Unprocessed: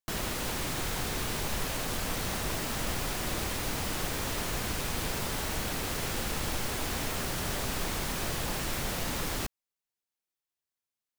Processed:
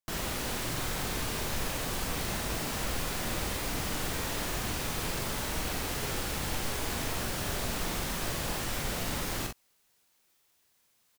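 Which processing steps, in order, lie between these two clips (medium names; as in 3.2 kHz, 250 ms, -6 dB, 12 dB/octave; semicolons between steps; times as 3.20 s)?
reverse; upward compressor, threshold -51 dBFS; reverse; early reflections 44 ms -5 dB, 61 ms -9.5 dB; trim -2 dB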